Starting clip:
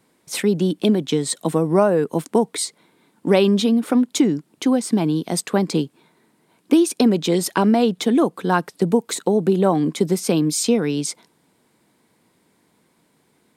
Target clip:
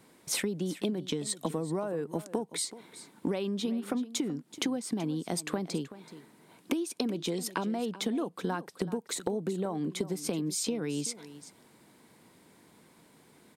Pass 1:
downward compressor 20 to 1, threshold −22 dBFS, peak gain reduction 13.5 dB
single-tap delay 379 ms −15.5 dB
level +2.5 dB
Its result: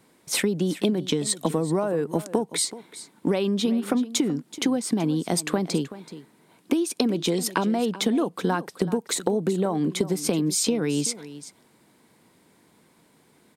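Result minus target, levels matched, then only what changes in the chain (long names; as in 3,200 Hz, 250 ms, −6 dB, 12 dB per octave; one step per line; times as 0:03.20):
downward compressor: peak gain reduction −8.5 dB
change: downward compressor 20 to 1, threshold −31 dBFS, peak gain reduction 22 dB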